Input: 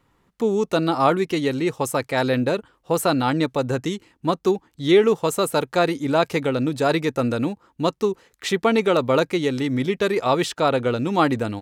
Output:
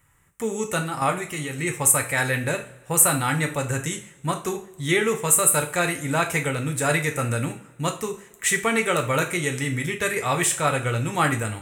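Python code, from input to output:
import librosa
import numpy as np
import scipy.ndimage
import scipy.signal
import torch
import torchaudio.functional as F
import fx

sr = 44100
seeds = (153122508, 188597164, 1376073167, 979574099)

y = fx.curve_eq(x, sr, hz=(130.0, 230.0, 940.0, 2000.0, 4600.0, 8200.0, 12000.0), db=(0, -16, -11, -1, -15, 10, 5))
y = fx.level_steps(y, sr, step_db=9, at=(0.81, 1.59))
y = fx.low_shelf(y, sr, hz=100.0, db=-5.5)
y = fx.rev_double_slope(y, sr, seeds[0], early_s=0.35, late_s=1.7, knee_db=-22, drr_db=3.0)
y = F.gain(torch.from_numpy(y), 6.0).numpy()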